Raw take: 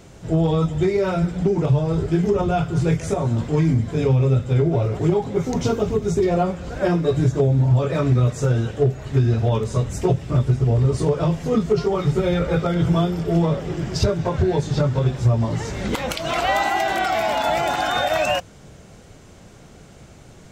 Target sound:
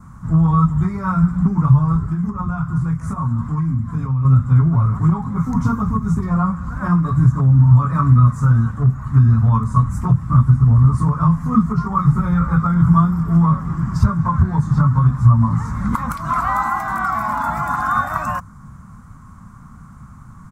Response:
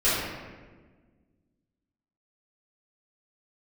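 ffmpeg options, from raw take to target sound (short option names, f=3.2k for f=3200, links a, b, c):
-filter_complex "[0:a]adynamicequalizer=threshold=0.00501:dfrequency=2900:dqfactor=2.6:tfrequency=2900:tqfactor=2.6:attack=5:release=100:ratio=0.375:range=2.5:mode=cutabove:tftype=bell,asettb=1/sr,asplit=3[a][b][c];[a]atrim=end=1.964[d];[b]atrim=start=1.96:end=4.25,asetpts=PTS-STARTPTS,afade=t=in:d=0.004:c=qsin,afade=t=out:st=2.286:d=0.004:c=qsin,acompressor=threshold=-22dB:ratio=6[e];[c]atrim=start=4.246[f];[d][e]acrossfade=d=0.004:c1=hsin:c2=qsin[g];[g][f]acrossfade=d=0.004:c1=qsin:c2=hsin,firequalizer=gain_entry='entry(230,0);entry(370,-25);entry(660,-20);entry(1100,9);entry(1600,-7);entry(2800,-25);entry(9600,-8)':delay=0.05:min_phase=1,volume=6.5dB"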